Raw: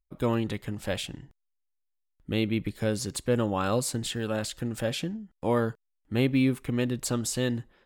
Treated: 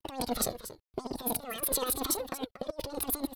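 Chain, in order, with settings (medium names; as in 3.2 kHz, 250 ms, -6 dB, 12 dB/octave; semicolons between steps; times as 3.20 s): companding laws mixed up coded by A; FFT filter 260 Hz 0 dB, 760 Hz -4 dB, 1.9 kHz +5 dB, 3 kHz -9 dB, 5.1 kHz +8 dB, 7.9 kHz -12 dB; compressor with a negative ratio -36 dBFS, ratio -0.5; speed mistake 33 rpm record played at 78 rpm; on a send: delay 234 ms -13 dB; on the sum: Shepard-style flanger falling 0.93 Hz; trim +8 dB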